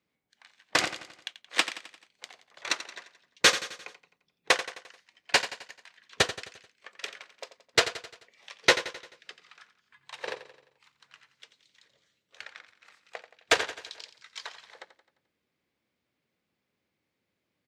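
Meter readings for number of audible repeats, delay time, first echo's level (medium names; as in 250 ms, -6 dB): 4, 87 ms, -13.0 dB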